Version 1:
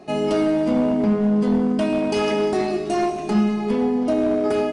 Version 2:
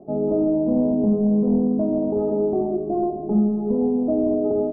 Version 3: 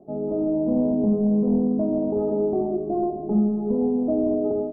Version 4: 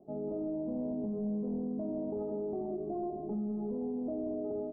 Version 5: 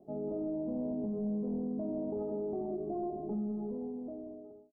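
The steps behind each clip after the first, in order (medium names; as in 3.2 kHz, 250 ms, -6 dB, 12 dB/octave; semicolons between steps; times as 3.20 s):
inverse Chebyshev low-pass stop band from 2.3 kHz, stop band 60 dB
level rider gain up to 4 dB; trim -5.5 dB
peak limiter -21 dBFS, peak gain reduction 8.5 dB; trim -8.5 dB
fade out at the end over 1.31 s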